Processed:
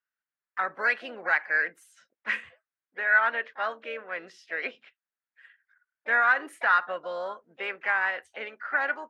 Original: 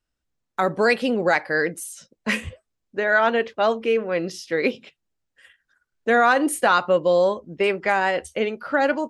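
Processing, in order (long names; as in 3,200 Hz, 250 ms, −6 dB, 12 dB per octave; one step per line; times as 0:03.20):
pitch-shifted copies added +3 semitones −18 dB, +5 semitones −13 dB
resonant band-pass 1,600 Hz, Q 2.5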